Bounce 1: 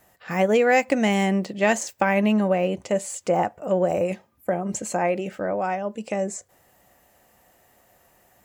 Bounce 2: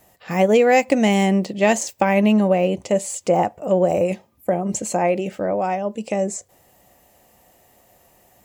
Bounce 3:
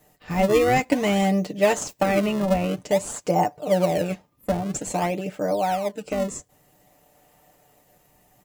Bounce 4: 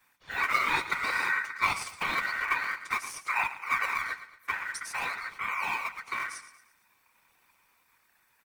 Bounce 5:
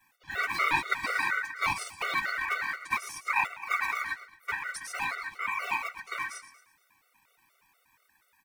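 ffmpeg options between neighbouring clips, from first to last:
-af "equalizer=f=1500:t=o:w=0.77:g=-7.5,volume=1.68"
-filter_complex "[0:a]aecho=1:1:6.7:0.7,asplit=2[s0][s1];[s1]acrusher=samples=32:mix=1:aa=0.000001:lfo=1:lforange=51.2:lforate=0.51,volume=0.422[s2];[s0][s2]amix=inputs=2:normalize=0,volume=0.473"
-af "aecho=1:1:114|228|342|456:0.224|0.0985|0.0433|0.0191,afftfilt=real='hypot(re,im)*cos(2*PI*random(0))':imag='hypot(re,im)*sin(2*PI*random(1))':win_size=512:overlap=0.75,aeval=exprs='val(0)*sin(2*PI*1700*n/s)':c=same"
-af "afftfilt=real='re*gt(sin(2*PI*4.2*pts/sr)*(1-2*mod(floor(b*sr/1024/380),2)),0)':imag='im*gt(sin(2*PI*4.2*pts/sr)*(1-2*mod(floor(b*sr/1024/380),2)),0)':win_size=1024:overlap=0.75,volume=1.41"

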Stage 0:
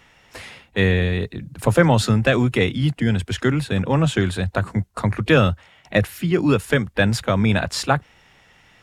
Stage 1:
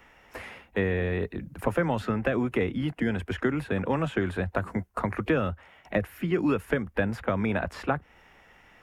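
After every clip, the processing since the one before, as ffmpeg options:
-filter_complex "[0:a]acrossover=split=300|1400|3100[s0][s1][s2][s3];[s0]acompressor=threshold=0.0631:ratio=4[s4];[s1]acompressor=threshold=0.0447:ratio=4[s5];[s2]acompressor=threshold=0.02:ratio=4[s6];[s3]acompressor=threshold=0.00501:ratio=4[s7];[s4][s5][s6][s7]amix=inputs=4:normalize=0,equalizer=f=125:t=o:w=1:g=-9,equalizer=f=4000:t=o:w=1:g=-10,equalizer=f=8000:t=o:w=1:g=-8"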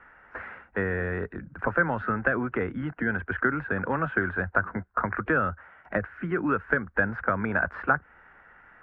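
-af "lowpass=f=1500:t=q:w=5.3,volume=0.708"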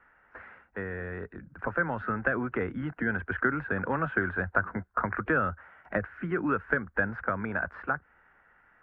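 -af "dynaudnorm=f=280:g=13:m=3.76,volume=0.376"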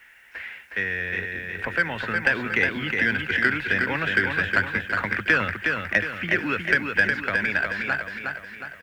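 -af "aexciter=amount=8.6:drive=9.3:freq=2000,aecho=1:1:363|726|1089|1452|1815|2178:0.596|0.292|0.143|0.0701|0.0343|0.0168"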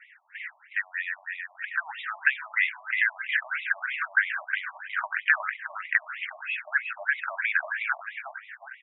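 -af "afftfilt=real='re*between(b*sr/1024,810*pow(2800/810,0.5+0.5*sin(2*PI*3.1*pts/sr))/1.41,810*pow(2800/810,0.5+0.5*sin(2*PI*3.1*pts/sr))*1.41)':imag='im*between(b*sr/1024,810*pow(2800/810,0.5+0.5*sin(2*PI*3.1*pts/sr))/1.41,810*pow(2800/810,0.5+0.5*sin(2*PI*3.1*pts/sr))*1.41)':win_size=1024:overlap=0.75"

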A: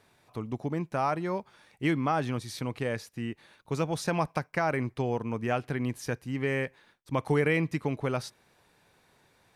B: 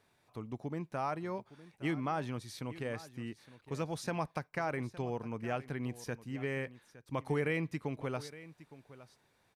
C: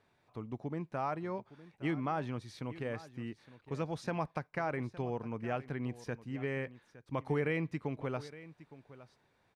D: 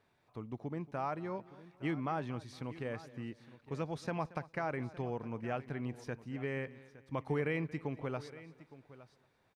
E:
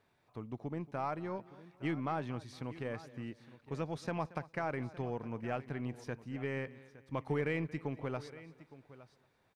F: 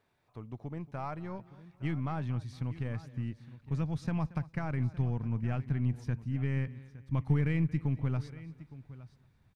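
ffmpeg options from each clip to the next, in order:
-af "aecho=1:1:863:0.141,volume=0.422"
-af "aemphasis=mode=reproduction:type=50fm"
-af "aecho=1:1:229|458|687:0.106|0.0392|0.0145,volume=0.841"
-af "aeval=exprs='0.0794*(cos(1*acos(clip(val(0)/0.0794,-1,1)))-cos(1*PI/2))+0.00141*(cos(8*acos(clip(val(0)/0.0794,-1,1)))-cos(8*PI/2))':c=same"
-af "asubboost=boost=10:cutoff=150,volume=0.841"

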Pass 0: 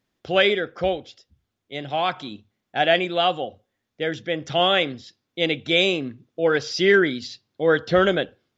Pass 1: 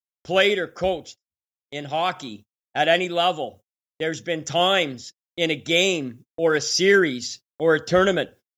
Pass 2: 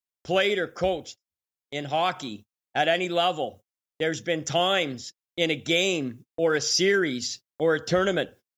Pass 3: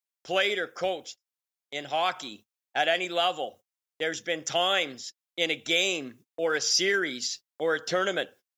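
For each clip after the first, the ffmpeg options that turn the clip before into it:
-af "agate=range=0.00891:threshold=0.00708:ratio=16:detection=peak,aexciter=amount=7.4:drive=2.8:freq=5700"
-af "acompressor=threshold=0.112:ratio=4"
-af "highpass=f=660:p=1"

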